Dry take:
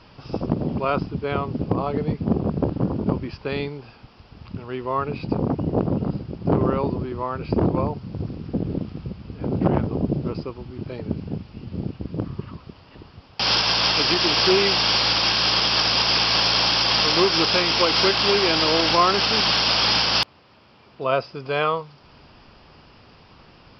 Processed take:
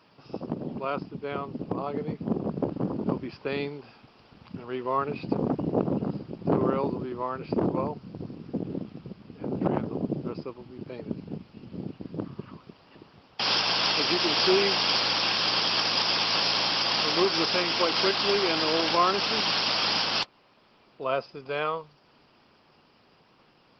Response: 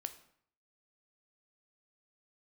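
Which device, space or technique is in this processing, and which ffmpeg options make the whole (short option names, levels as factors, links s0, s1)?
video call: -af "highpass=170,dynaudnorm=f=170:g=31:m=2.24,volume=0.422" -ar 48000 -c:a libopus -b:a 20k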